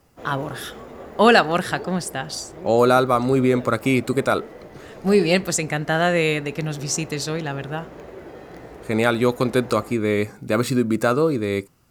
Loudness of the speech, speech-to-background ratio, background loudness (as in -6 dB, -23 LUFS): -21.0 LUFS, 19.0 dB, -40.0 LUFS